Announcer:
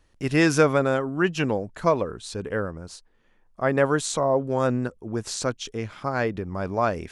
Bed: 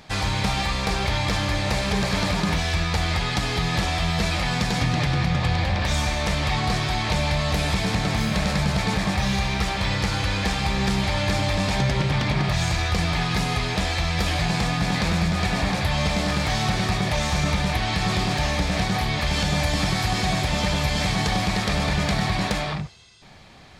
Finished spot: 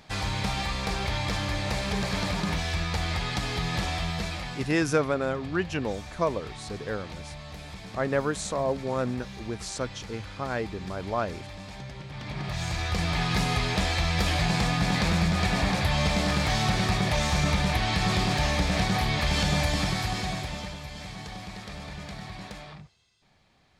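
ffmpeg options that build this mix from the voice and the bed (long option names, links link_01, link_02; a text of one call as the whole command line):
ffmpeg -i stem1.wav -i stem2.wav -filter_complex "[0:a]adelay=4350,volume=-5.5dB[link_01];[1:a]volume=11dB,afade=type=out:start_time=3.92:duration=0.85:silence=0.223872,afade=type=in:start_time=12.1:duration=1.3:silence=0.149624,afade=type=out:start_time=19.51:duration=1.27:silence=0.188365[link_02];[link_01][link_02]amix=inputs=2:normalize=0" out.wav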